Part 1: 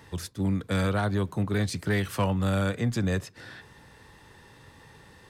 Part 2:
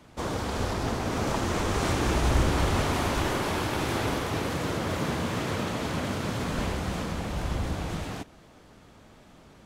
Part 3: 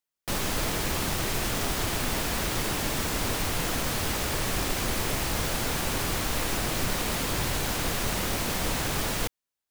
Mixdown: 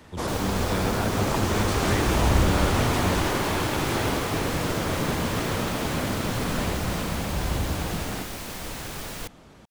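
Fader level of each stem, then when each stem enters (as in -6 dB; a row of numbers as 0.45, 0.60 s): -3.5, +2.5, -6.5 dB; 0.00, 0.00, 0.00 s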